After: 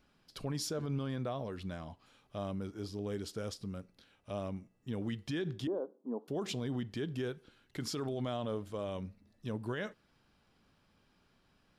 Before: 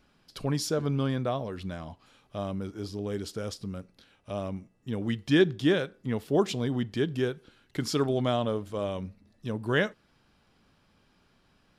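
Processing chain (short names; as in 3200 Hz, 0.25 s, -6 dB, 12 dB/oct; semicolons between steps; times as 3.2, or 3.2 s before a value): 5.67–6.28 elliptic band-pass 240–1000 Hz, stop band 40 dB; limiter -23.5 dBFS, peak gain reduction 12.5 dB; gain -5 dB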